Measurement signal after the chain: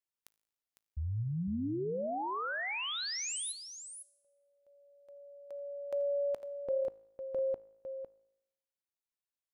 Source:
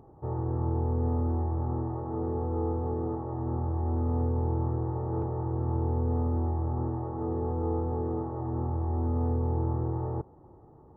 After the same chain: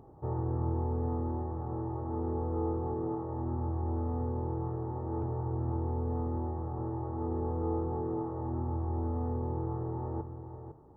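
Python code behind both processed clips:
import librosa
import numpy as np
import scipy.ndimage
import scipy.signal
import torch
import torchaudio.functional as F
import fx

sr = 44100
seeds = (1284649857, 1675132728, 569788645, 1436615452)

y = fx.rider(x, sr, range_db=10, speed_s=2.0)
y = fx.comb_fb(y, sr, f0_hz=54.0, decay_s=0.84, harmonics='all', damping=0.0, mix_pct=40)
y = y + 10.0 ** (-9.5 / 20.0) * np.pad(y, (int(504 * sr / 1000.0), 0))[:len(y)]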